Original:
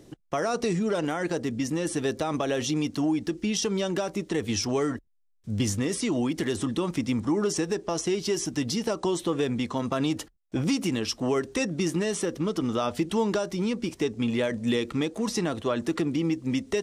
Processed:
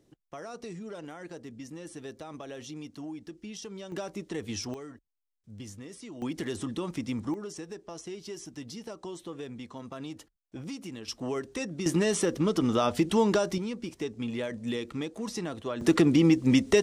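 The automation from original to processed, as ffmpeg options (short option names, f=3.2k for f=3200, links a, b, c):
-af "asetnsamples=n=441:p=0,asendcmd='3.92 volume volume -7.5dB;4.74 volume volume -17dB;6.22 volume volume -6dB;7.34 volume volume -13.5dB;11.08 volume volume -7dB;11.86 volume volume 1.5dB;13.58 volume volume -7dB;15.81 volume volume 5.5dB',volume=-14.5dB"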